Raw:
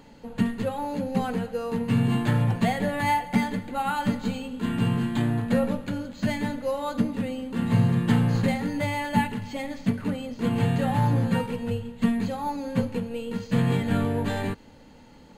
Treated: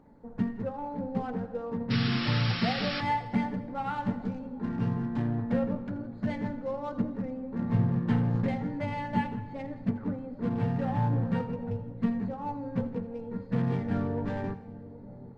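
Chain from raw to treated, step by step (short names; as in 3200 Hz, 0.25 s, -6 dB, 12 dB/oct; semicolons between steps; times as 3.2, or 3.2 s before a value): Wiener smoothing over 15 samples; high shelf 4100 Hz -3.5 dB; painted sound noise, 1.9–3.01, 1100–5600 Hz -28 dBFS; air absorption 120 m; split-band echo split 680 Hz, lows 0.771 s, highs 83 ms, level -15.5 dB; on a send at -16 dB: reverb RT60 1.4 s, pre-delay 12 ms; on the sum: gain -5 dB; Opus 32 kbps 48000 Hz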